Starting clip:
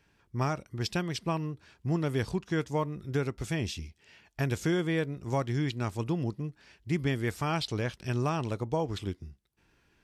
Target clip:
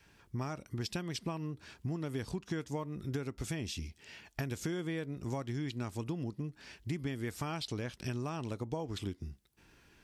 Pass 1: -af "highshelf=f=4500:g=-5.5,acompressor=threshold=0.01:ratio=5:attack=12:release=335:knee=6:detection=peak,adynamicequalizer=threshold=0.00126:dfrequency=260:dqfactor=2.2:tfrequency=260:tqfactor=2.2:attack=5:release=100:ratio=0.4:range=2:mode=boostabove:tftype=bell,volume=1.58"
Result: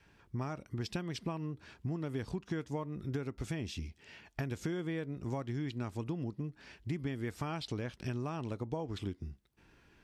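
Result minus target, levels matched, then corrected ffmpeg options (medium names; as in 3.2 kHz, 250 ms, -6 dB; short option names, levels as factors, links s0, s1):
8 kHz band -6.0 dB
-af "highshelf=f=4500:g=4.5,acompressor=threshold=0.01:ratio=5:attack=12:release=335:knee=6:detection=peak,adynamicequalizer=threshold=0.00126:dfrequency=260:dqfactor=2.2:tfrequency=260:tqfactor=2.2:attack=5:release=100:ratio=0.4:range=2:mode=boostabove:tftype=bell,volume=1.58"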